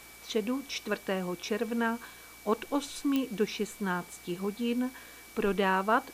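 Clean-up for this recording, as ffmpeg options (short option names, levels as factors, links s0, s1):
-af "adeclick=t=4,bandreject=f=57.4:t=h:w=4,bandreject=f=114.8:t=h:w=4,bandreject=f=172.2:t=h:w=4,bandreject=f=229.6:t=h:w=4,bandreject=f=287:t=h:w=4,bandreject=f=2300:w=30,afwtdn=0.0025"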